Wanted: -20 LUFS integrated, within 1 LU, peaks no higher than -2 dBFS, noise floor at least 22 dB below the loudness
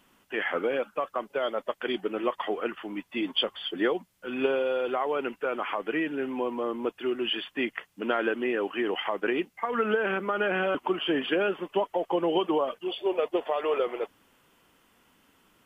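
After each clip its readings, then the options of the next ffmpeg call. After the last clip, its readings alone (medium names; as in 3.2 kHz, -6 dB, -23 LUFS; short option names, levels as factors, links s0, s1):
loudness -29.5 LUFS; peak level -13.5 dBFS; loudness target -20.0 LUFS
-> -af "volume=2.99"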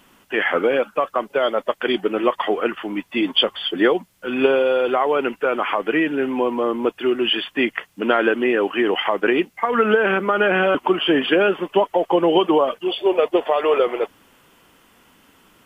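loudness -20.0 LUFS; peak level -4.0 dBFS; noise floor -58 dBFS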